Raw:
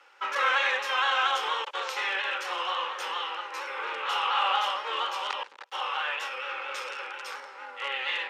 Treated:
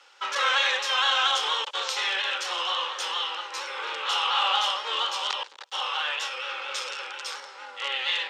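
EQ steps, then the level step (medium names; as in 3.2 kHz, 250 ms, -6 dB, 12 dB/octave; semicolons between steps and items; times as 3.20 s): high-pass 240 Hz 12 dB/octave; high-order bell 5.2 kHz +9.5 dB; 0.0 dB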